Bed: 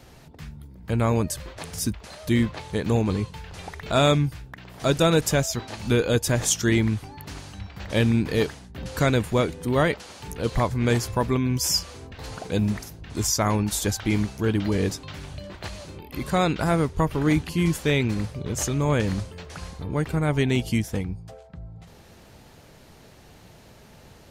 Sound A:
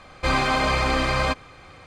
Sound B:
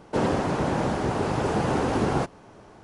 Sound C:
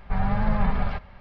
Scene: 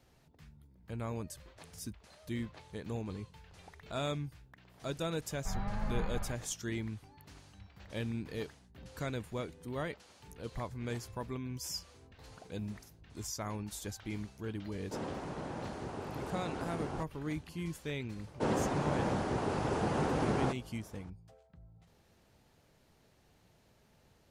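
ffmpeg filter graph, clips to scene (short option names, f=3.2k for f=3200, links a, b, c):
-filter_complex "[2:a]asplit=2[a][b];[0:a]volume=-17dB[c];[3:a]atrim=end=1.2,asetpts=PTS-STARTPTS,volume=-13dB,afade=t=in:d=0.004:c=hsin,afade=t=out:st=1.196:d=0.004:c=hsin,adelay=5350[d];[a]atrim=end=2.83,asetpts=PTS-STARTPTS,volume=-16dB,afade=t=in:d=0.004:c=hsin,afade=t=out:st=2.826:d=0.004:c=hsin,adelay=14780[e];[b]atrim=end=2.83,asetpts=PTS-STARTPTS,volume=-8dB,afade=t=in:d=0.004:c=hsin,afade=t=out:st=2.826:d=0.004:c=hsin,adelay=18270[f];[c][d][e][f]amix=inputs=4:normalize=0"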